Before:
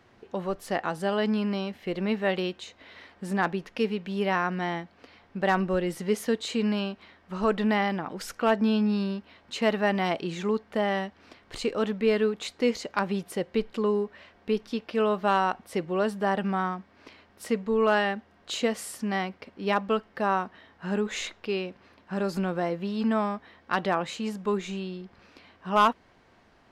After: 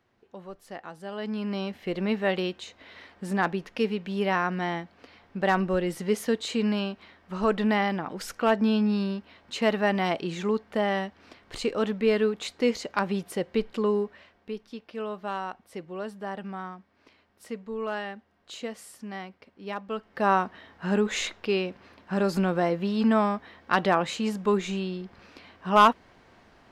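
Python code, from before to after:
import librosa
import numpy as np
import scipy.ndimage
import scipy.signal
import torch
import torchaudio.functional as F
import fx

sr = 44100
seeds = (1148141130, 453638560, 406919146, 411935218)

y = fx.gain(x, sr, db=fx.line((1.02, -11.5), (1.65, 0.5), (14.04, 0.5), (14.54, -9.0), (19.86, -9.0), (20.28, 3.5)))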